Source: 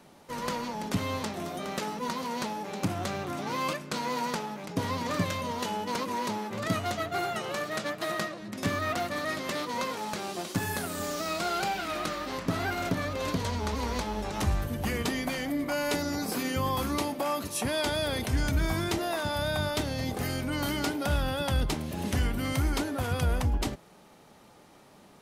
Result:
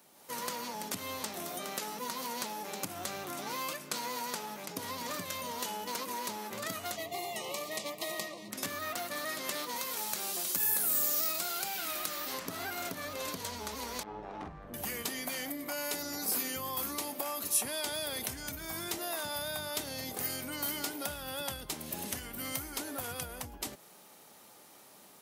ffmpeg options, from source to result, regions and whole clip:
-filter_complex "[0:a]asettb=1/sr,asplit=3[a][b][c];[a]atrim=end=6.964[d];[b]atrim=start=6.96:end=8.51,asetpts=PTS-STARTPTS,afade=t=in:d=0.004:c=qsin,afade=t=out:st=1.546:d=0.004:c=qsin,asuperstop=centerf=1500:order=12:qfactor=2.3,highshelf=f=9.7k:g=-5[e];[c]atrim=start=8.506[f];[d][e]acrossfade=d=0.004:c1=hsin:c2=qsin[g];[g][f]acrossfade=d=0.004:c1=qsin:c2=hsin,asettb=1/sr,asplit=3[h][i][j];[h]atrim=end=9.764[k];[i]atrim=start=9.76:end=12.34,asetpts=PTS-STARTPTS,afade=t=in:d=0.004:c=qsin,afade=t=out:st=2.576:d=0.004:c=qsin,acrossover=split=120|1700[l][m][n];[l]acompressor=threshold=-48dB:ratio=4[o];[m]acompressor=threshold=-37dB:ratio=4[p];[n]acompressor=threshold=-39dB:ratio=4[q];[o][p][q]amix=inputs=3:normalize=0,highshelf=f=11k:g=9.5[r];[j]atrim=start=12.336[s];[k][r]acrossfade=d=0.004:c1=hsin:c2=qsin[t];[t][s]acrossfade=d=0.004:c1=qsin:c2=hsin,asettb=1/sr,asplit=3[u][v][w];[u]atrim=end=14.034[x];[v]atrim=start=14.03:end=14.74,asetpts=PTS-STARTPTS,afade=t=in:d=0.004:c=qsin,afade=t=out:st=0.706:d=0.004:c=qsin,lowpass=1.4k,tremolo=f=100:d=0.824,asplit=2[y][z];[z]adelay=45,volume=-5dB[aa];[y][aa]amix=inputs=2:normalize=0,atrim=end_sample=31311[ab];[w]atrim=start=14.736[ac];[x][ab]acrossfade=d=0.004:c1=hsin:c2=qsin[ad];[ad][ac]acrossfade=d=0.004:c1=qsin:c2=hsin,acompressor=threshold=-32dB:ratio=6,aemphasis=mode=production:type=bsi,dynaudnorm=f=120:g=3:m=6dB,volume=-8.5dB"

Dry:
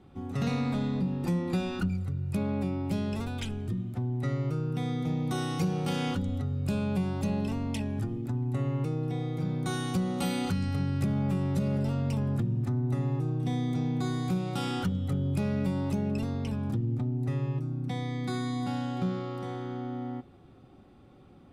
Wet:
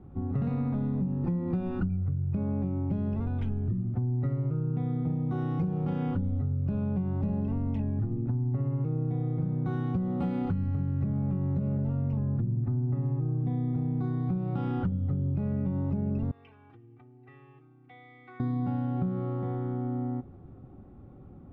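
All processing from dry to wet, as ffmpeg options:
-filter_complex "[0:a]asettb=1/sr,asplit=3[a][b][c];[a]atrim=end=16.314[d];[b]atrim=start=16.31:end=18.4,asetpts=PTS-STARTPTS,afade=t=in:d=0.004:c=qsin,afade=t=out:st=2.086:d=0.004:c=qsin,bandpass=f=2.5k:t=q:w=2.4,aecho=1:1:2.6:0.91,atrim=end_sample=92169[e];[c]atrim=start=18.396[f];[d][e]acrossfade=d=0.004:c1=hsin:c2=qsin[g];[g][f]acrossfade=d=0.004:c1=qsin:c2=hsin,lowpass=1.3k,lowshelf=f=210:g=10.5,acompressor=threshold=-26dB:ratio=6"

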